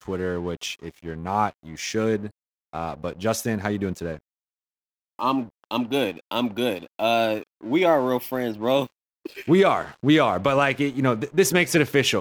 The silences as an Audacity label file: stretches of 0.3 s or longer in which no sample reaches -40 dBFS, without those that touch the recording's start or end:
2.300000	2.730000	silence
4.190000	5.190000	silence
8.870000	9.250000	silence